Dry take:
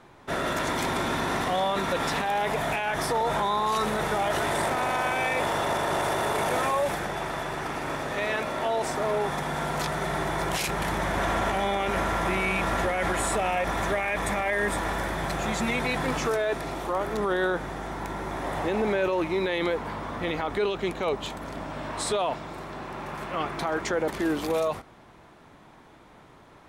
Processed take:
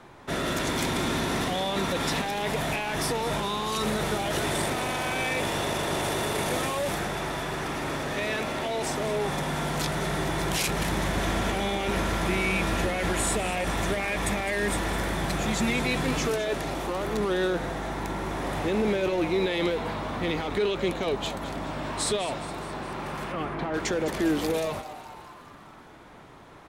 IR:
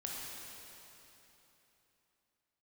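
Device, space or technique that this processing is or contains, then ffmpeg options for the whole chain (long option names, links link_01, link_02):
one-band saturation: -filter_complex "[0:a]acrossover=split=430|2300[link_01][link_02][link_03];[link_02]asoftclip=type=tanh:threshold=-36dB[link_04];[link_01][link_04][link_03]amix=inputs=3:normalize=0,asettb=1/sr,asplit=3[link_05][link_06][link_07];[link_05]atrim=end=23.324[link_08];[link_06]atrim=start=23.32:end=23.74,asetpts=PTS-STARTPTS,afade=type=in:duration=0.004:curve=qsin,afade=type=out:start_time=0.416:duration=0.004:curve=qsin,lowpass=2100[link_09];[link_07]atrim=start=23.736[link_10];[link_08][link_09]acrossfade=duration=0.004:curve1=hsin:curve2=qsin[link_11];[link_11][link_10]acrossfade=duration=0.004:curve1=qsin:curve2=hsin,asplit=8[link_12][link_13][link_14][link_15][link_16][link_17][link_18][link_19];[link_13]adelay=207,afreqshift=140,volume=-14dB[link_20];[link_14]adelay=414,afreqshift=280,volume=-18.2dB[link_21];[link_15]adelay=621,afreqshift=420,volume=-22.3dB[link_22];[link_16]adelay=828,afreqshift=560,volume=-26.5dB[link_23];[link_17]adelay=1035,afreqshift=700,volume=-30.6dB[link_24];[link_18]adelay=1242,afreqshift=840,volume=-34.8dB[link_25];[link_19]adelay=1449,afreqshift=980,volume=-38.9dB[link_26];[link_12][link_20][link_21][link_22][link_23][link_24][link_25][link_26]amix=inputs=8:normalize=0,volume=3dB"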